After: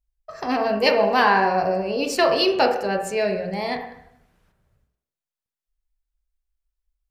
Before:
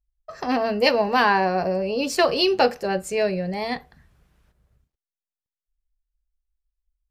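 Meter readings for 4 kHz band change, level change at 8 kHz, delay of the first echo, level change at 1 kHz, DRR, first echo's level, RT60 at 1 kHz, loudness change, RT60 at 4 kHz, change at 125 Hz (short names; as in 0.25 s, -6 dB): 0.0 dB, 0.0 dB, none, +2.0 dB, 4.5 dB, none, 0.75 s, +1.0 dB, 0.70 s, -1.5 dB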